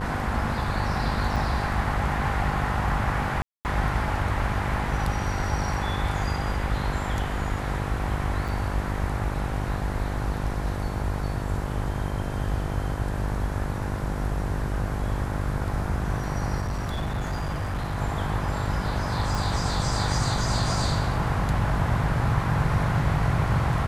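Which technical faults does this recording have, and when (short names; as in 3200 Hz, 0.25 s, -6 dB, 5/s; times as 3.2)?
buzz 50 Hz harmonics 21 -30 dBFS
1.36 gap 5 ms
3.42–3.65 gap 0.229 s
8.48–8.49 gap 6 ms
16.62–17.97 clipped -24.5 dBFS
19.35 pop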